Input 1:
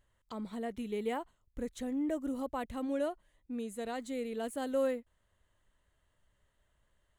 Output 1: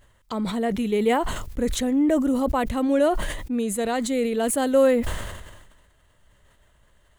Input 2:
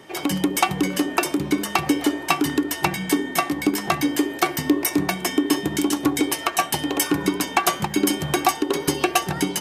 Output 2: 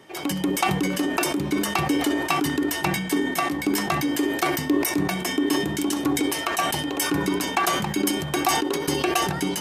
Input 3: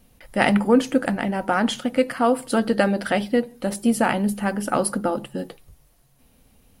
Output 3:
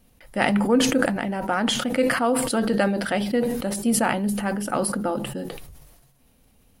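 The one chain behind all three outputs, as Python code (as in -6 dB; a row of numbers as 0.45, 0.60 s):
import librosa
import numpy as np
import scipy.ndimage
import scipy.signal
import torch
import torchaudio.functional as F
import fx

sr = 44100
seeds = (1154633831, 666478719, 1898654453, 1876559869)

y = fx.sustainer(x, sr, db_per_s=42.0)
y = y * 10.0 ** (-24 / 20.0) / np.sqrt(np.mean(np.square(y)))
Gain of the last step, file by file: +13.5, -4.5, -3.0 dB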